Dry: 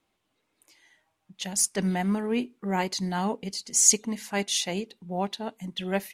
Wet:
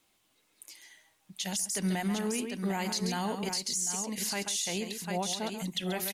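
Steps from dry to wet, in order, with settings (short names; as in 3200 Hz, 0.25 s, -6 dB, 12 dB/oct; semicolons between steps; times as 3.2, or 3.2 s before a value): high shelf 2600 Hz +10 dB; compressor 5:1, threshold -25 dBFS, peak gain reduction 18.5 dB; high shelf 7300 Hz +4 dB; tapped delay 0.135/0.747 s -10.5/-8.5 dB; limiter -22.5 dBFS, peak gain reduction 11.5 dB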